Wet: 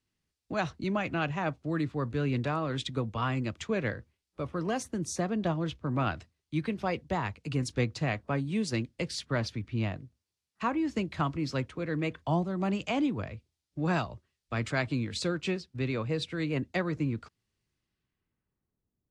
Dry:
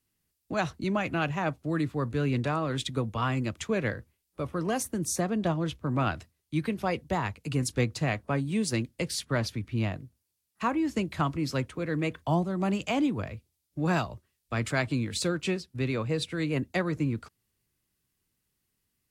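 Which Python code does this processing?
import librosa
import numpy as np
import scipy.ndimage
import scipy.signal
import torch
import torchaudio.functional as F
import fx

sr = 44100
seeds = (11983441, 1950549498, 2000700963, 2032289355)

y = fx.filter_sweep_lowpass(x, sr, from_hz=6000.0, to_hz=680.0, start_s=17.73, end_s=18.86, q=0.77)
y = F.gain(torch.from_numpy(y), -2.0).numpy()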